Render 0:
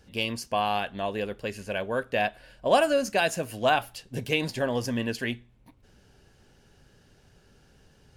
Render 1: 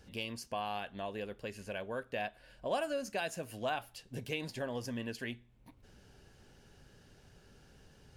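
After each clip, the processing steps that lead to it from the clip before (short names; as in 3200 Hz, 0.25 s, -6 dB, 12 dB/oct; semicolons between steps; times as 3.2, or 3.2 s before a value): compressor 1.5:1, threshold -51 dBFS, peak gain reduction 12.5 dB; gain -1.5 dB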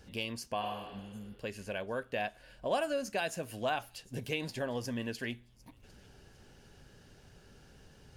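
thin delay 0.752 s, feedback 34%, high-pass 4300 Hz, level -19.5 dB; spectral repair 0.65–1.32, 280–6100 Hz both; gain +2.5 dB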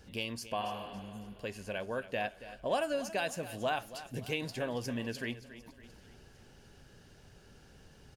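feedback echo 0.279 s, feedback 46%, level -14.5 dB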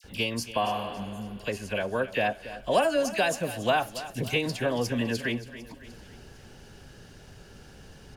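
dispersion lows, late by 43 ms, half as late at 1700 Hz; gain +8.5 dB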